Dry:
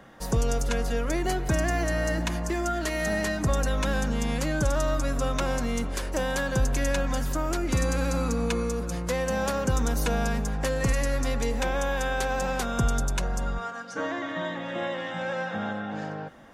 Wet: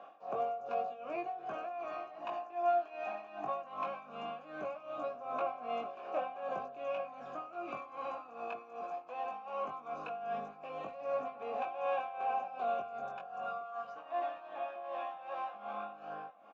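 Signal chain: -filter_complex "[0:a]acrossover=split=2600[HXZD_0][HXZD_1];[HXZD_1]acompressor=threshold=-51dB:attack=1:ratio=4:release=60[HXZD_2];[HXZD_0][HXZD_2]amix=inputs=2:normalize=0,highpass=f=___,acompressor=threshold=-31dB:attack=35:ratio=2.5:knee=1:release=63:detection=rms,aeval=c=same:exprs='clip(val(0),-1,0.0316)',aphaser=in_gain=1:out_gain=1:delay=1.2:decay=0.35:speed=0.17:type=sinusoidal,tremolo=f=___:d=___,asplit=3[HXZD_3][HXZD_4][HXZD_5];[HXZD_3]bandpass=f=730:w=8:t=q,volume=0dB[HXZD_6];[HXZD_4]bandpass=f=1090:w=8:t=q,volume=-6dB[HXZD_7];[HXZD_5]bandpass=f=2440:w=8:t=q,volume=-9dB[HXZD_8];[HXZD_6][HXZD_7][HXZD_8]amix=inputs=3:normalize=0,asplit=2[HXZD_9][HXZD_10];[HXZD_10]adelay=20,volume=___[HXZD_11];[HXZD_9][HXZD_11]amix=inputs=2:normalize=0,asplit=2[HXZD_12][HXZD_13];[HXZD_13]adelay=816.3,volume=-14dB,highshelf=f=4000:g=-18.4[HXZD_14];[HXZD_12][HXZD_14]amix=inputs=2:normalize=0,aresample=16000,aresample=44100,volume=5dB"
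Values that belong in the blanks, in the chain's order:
220, 2.6, 0.79, -3.5dB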